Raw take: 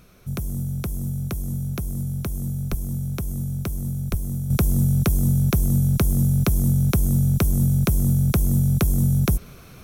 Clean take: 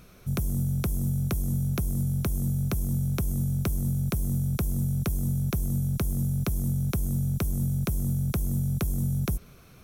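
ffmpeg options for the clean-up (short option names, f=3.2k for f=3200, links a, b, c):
-filter_complex "[0:a]asplit=3[a][b][c];[a]afade=t=out:st=2.7:d=0.02[d];[b]highpass=f=140:w=0.5412,highpass=f=140:w=1.3066,afade=t=in:st=2.7:d=0.02,afade=t=out:st=2.82:d=0.02[e];[c]afade=t=in:st=2.82:d=0.02[f];[d][e][f]amix=inputs=3:normalize=0,asplit=3[g][h][i];[g]afade=t=out:st=4.1:d=0.02[j];[h]highpass=f=140:w=0.5412,highpass=f=140:w=1.3066,afade=t=in:st=4.1:d=0.02,afade=t=out:st=4.22:d=0.02[k];[i]afade=t=in:st=4.22:d=0.02[l];[j][k][l]amix=inputs=3:normalize=0,asetnsamples=n=441:p=0,asendcmd='4.5 volume volume -8dB',volume=0dB"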